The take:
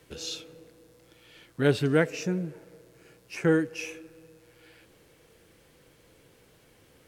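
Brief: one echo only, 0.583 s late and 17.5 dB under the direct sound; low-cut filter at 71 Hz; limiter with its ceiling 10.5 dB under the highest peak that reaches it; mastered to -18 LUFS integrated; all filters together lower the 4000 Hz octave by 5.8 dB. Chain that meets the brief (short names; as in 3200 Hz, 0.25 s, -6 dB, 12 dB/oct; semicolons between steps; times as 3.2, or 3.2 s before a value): HPF 71 Hz; bell 4000 Hz -7.5 dB; limiter -19.5 dBFS; echo 0.583 s -17.5 dB; gain +15.5 dB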